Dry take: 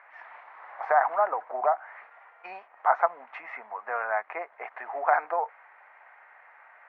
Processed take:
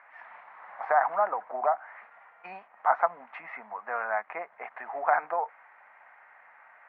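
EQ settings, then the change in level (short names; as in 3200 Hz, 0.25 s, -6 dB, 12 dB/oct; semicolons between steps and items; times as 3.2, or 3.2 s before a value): air absorption 140 m; resonant low shelf 260 Hz +9 dB, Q 1.5; 0.0 dB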